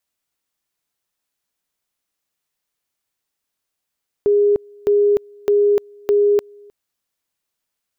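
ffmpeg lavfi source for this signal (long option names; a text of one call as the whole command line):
ffmpeg -f lavfi -i "aevalsrc='pow(10,(-11-29*gte(mod(t,0.61),0.3))/20)*sin(2*PI*410*t)':duration=2.44:sample_rate=44100" out.wav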